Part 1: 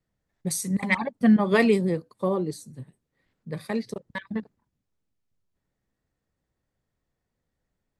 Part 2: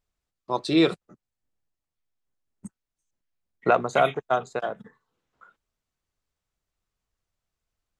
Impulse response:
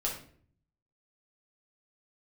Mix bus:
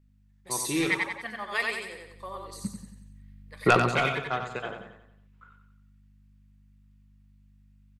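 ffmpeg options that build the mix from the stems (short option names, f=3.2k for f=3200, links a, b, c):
-filter_complex "[0:a]highpass=1.2k,volume=-2.5dB,asplit=2[a][b];[b]volume=-3dB[c];[1:a]equalizer=f=100:t=o:w=0.67:g=6,equalizer=f=630:t=o:w=0.67:g=-9,equalizer=f=2.5k:t=o:w=0.67:g=8,equalizer=f=6.3k:t=o:w=0.67:g=-5,aeval=exprs='val(0)+0.00178*(sin(2*PI*50*n/s)+sin(2*PI*2*50*n/s)/2+sin(2*PI*3*50*n/s)/3+sin(2*PI*4*50*n/s)/4+sin(2*PI*5*50*n/s)/5)':c=same,aeval=exprs='0.596*(cos(1*acos(clip(val(0)/0.596,-1,1)))-cos(1*PI/2))+0.188*(cos(5*acos(clip(val(0)/0.596,-1,1)))-cos(5*PI/2))':c=same,volume=-3dB,afade=t=in:st=1.87:d=0.45:silence=0.237137,afade=t=out:st=3.56:d=0.49:silence=0.354813,asplit=3[d][e][f];[e]volume=-15.5dB[g];[f]volume=-6dB[h];[2:a]atrim=start_sample=2205[i];[g][i]afir=irnorm=-1:irlink=0[j];[c][h]amix=inputs=2:normalize=0,aecho=0:1:91|182|273|364|455|546:1|0.46|0.212|0.0973|0.0448|0.0206[k];[a][d][j][k]amix=inputs=4:normalize=0"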